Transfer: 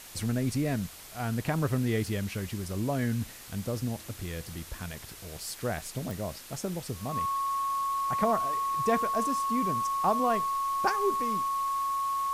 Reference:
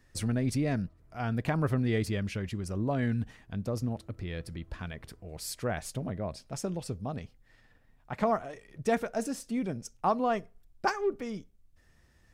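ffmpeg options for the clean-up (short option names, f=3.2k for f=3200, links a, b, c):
-af "adeclick=t=4,bandreject=f=1.1k:w=30,afwtdn=0.005"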